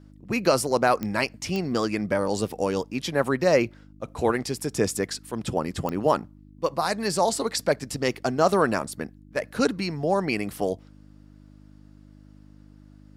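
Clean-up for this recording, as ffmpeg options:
-af "adeclick=t=4,bandreject=f=50.7:t=h:w=4,bandreject=f=101.4:t=h:w=4,bandreject=f=152.1:t=h:w=4,bandreject=f=202.8:t=h:w=4,bandreject=f=253.5:t=h:w=4,bandreject=f=304.2:t=h:w=4"

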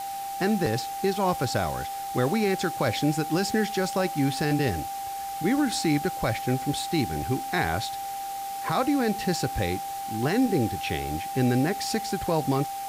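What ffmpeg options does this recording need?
-af "adeclick=t=4,bandreject=f=790:w=30,afwtdn=0.0079"

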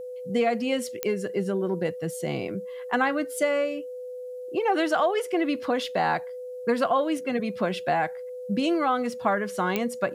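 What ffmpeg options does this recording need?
-af "adeclick=t=4,bandreject=f=500:w=30,agate=range=-21dB:threshold=-29dB"

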